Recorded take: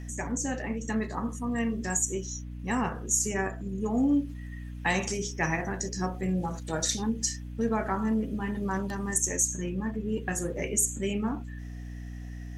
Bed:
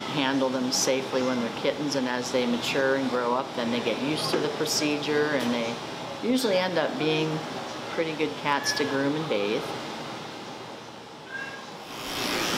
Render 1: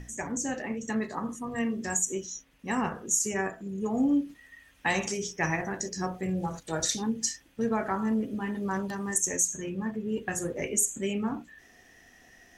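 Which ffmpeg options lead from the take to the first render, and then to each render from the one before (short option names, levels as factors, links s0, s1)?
-af "bandreject=f=60:t=h:w=6,bandreject=f=120:t=h:w=6,bandreject=f=180:t=h:w=6,bandreject=f=240:t=h:w=6,bandreject=f=300:t=h:w=6"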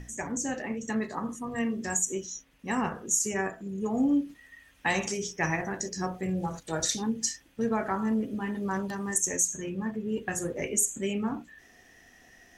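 -af anull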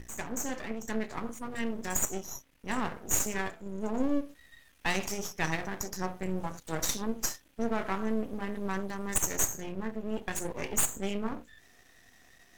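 -af "crystalizer=i=0.5:c=0,aeval=exprs='max(val(0),0)':c=same"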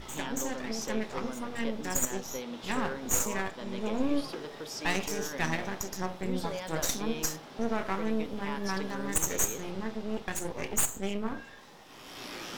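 -filter_complex "[1:a]volume=0.2[s0];[0:a][s0]amix=inputs=2:normalize=0"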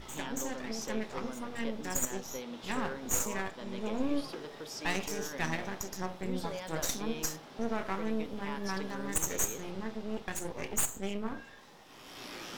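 -af "volume=0.708"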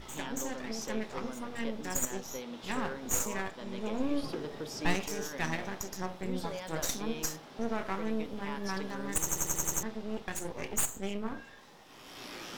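-filter_complex "[0:a]asettb=1/sr,asplit=3[s0][s1][s2];[s0]atrim=end=4.234[s3];[s1]atrim=start=4.23:end=4.95,asetpts=PTS-STARTPTS,afade=t=in:d=0.004:c=qsin,afade=t=out:st=0.716:d=0.004:c=qsin,lowshelf=f=420:g=9.5[s4];[s2]atrim=start=4.946[s5];[s3][s4]acrossfade=d=0.004:c1=hsin:c2=qsin[s6];[s6][s5]acrossfade=d=0.004:c1=qsin:c2=hsin,asplit=8[s7][s8][s9][s10][s11][s12][s13][s14];[s7]atrim=end=9.292[s15];[s8]atrim=start=9.198:end=9.292[s16];[s9]atrim=start=9.198:end=9.292[s17];[s10]atrim=start=9.198:end=9.292[s18];[s11]atrim=start=9.198:end=9.292[s19];[s12]atrim=start=9.198:end=9.292[s20];[s13]atrim=start=9.198:end=9.292[s21];[s14]atrim=start=9.828[s22];[s15][s16]acrossfade=d=0.004:c1=hsin:c2=hsin[s23];[s23][s17]acrossfade=d=0.004:c1=hsin:c2=hsin[s24];[s24][s18]acrossfade=d=0.004:c1=hsin:c2=hsin[s25];[s25][s19]acrossfade=d=0.004:c1=hsin:c2=hsin[s26];[s26][s20]acrossfade=d=0.004:c1=hsin:c2=hsin[s27];[s27][s21]acrossfade=d=0.004:c1=hsin:c2=hsin[s28];[s28][s22]acrossfade=d=0.004:c1=hsin:c2=hsin"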